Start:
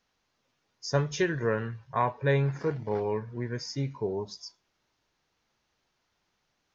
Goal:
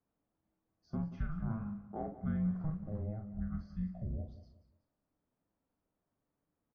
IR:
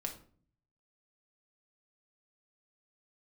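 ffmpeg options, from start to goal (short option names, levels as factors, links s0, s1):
-filter_complex "[0:a]lowpass=1000,alimiter=limit=0.0794:level=0:latency=1:release=281,asplit=2[s0][s1];[s1]adelay=42,volume=0.473[s2];[s0][s2]amix=inputs=2:normalize=0,afreqshift=-320,asplit=2[s3][s4];[s4]aecho=0:1:182|364|546:0.2|0.0658|0.0217[s5];[s3][s5]amix=inputs=2:normalize=0,volume=0.501"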